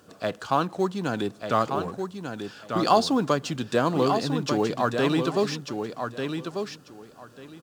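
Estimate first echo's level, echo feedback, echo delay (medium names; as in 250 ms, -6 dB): -6.5 dB, 18%, 1193 ms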